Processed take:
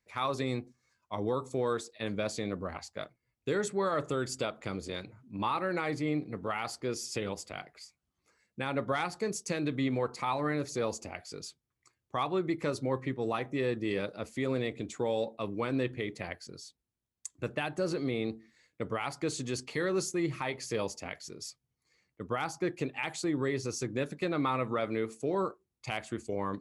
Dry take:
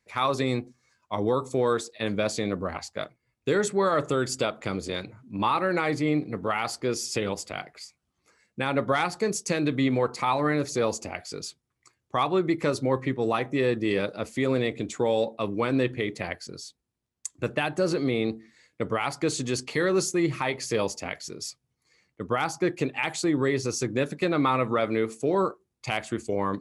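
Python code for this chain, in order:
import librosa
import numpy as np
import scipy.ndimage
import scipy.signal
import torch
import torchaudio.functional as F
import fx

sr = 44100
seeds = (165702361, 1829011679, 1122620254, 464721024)

y = fx.low_shelf(x, sr, hz=64.0, db=5.5)
y = y * librosa.db_to_amplitude(-7.0)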